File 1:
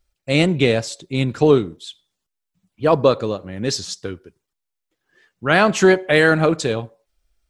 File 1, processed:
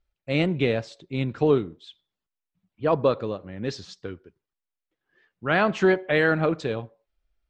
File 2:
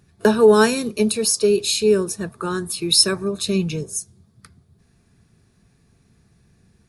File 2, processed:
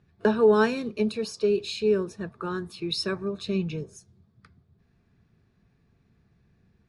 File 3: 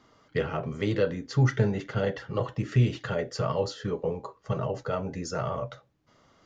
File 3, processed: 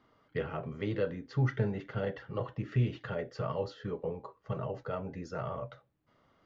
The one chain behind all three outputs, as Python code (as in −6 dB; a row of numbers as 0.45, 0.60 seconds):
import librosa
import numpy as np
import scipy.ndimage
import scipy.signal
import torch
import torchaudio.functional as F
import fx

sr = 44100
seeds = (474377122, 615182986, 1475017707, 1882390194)

y = scipy.signal.sosfilt(scipy.signal.butter(2, 3300.0, 'lowpass', fs=sr, output='sos'), x)
y = F.gain(torch.from_numpy(y), -6.5).numpy()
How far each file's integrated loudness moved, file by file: −6.5, −8.0, −6.5 LU